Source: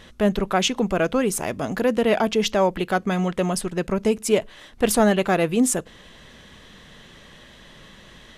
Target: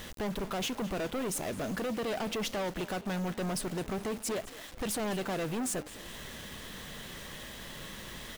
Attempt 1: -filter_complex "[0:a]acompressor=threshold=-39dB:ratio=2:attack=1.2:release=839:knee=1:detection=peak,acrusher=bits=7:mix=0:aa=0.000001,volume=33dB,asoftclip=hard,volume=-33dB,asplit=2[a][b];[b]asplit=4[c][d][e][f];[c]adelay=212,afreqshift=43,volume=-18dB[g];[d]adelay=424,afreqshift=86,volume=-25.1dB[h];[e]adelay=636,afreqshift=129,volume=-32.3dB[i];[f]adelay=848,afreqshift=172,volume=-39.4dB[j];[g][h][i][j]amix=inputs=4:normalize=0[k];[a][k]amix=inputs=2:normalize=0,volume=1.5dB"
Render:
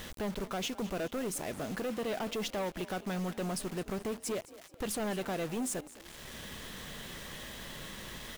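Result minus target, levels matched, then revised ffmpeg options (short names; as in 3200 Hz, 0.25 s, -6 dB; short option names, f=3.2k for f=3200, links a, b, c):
compressor: peak gain reduction +5.5 dB
-filter_complex "[0:a]acompressor=threshold=-28dB:ratio=2:attack=1.2:release=839:knee=1:detection=peak,acrusher=bits=7:mix=0:aa=0.000001,volume=33dB,asoftclip=hard,volume=-33dB,asplit=2[a][b];[b]asplit=4[c][d][e][f];[c]adelay=212,afreqshift=43,volume=-18dB[g];[d]adelay=424,afreqshift=86,volume=-25.1dB[h];[e]adelay=636,afreqshift=129,volume=-32.3dB[i];[f]adelay=848,afreqshift=172,volume=-39.4dB[j];[g][h][i][j]amix=inputs=4:normalize=0[k];[a][k]amix=inputs=2:normalize=0,volume=1.5dB"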